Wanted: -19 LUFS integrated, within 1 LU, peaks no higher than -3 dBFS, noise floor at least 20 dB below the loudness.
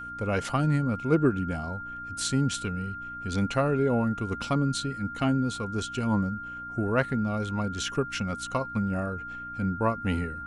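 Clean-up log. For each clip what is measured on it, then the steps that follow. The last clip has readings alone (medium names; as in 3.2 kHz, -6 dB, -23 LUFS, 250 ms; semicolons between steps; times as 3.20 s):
hum 60 Hz; highest harmonic 300 Hz; hum level -48 dBFS; steady tone 1.4 kHz; tone level -36 dBFS; loudness -28.5 LUFS; peak level -10.0 dBFS; loudness target -19.0 LUFS
-> de-hum 60 Hz, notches 5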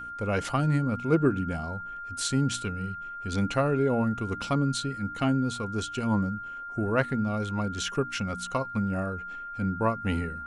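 hum not found; steady tone 1.4 kHz; tone level -36 dBFS
-> band-stop 1.4 kHz, Q 30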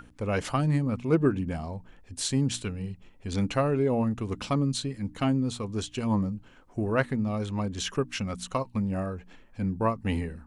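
steady tone not found; loudness -29.0 LUFS; peak level -9.0 dBFS; loudness target -19.0 LUFS
-> trim +10 dB; peak limiter -3 dBFS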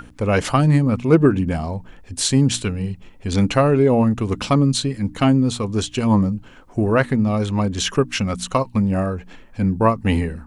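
loudness -19.0 LUFS; peak level -3.0 dBFS; noise floor -46 dBFS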